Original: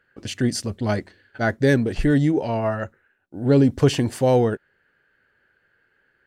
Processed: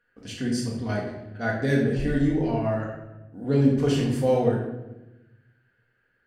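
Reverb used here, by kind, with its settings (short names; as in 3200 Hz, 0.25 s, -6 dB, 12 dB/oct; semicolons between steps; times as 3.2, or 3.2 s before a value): shoebox room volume 410 m³, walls mixed, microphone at 1.8 m; gain -10 dB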